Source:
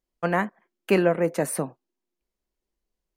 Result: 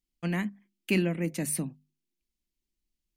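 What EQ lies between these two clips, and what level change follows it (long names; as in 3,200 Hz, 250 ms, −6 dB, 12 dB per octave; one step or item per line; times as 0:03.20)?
flat-topped bell 810 Hz −16 dB 2.3 octaves
mains-hum notches 50/100/150/200/250 Hz
0.0 dB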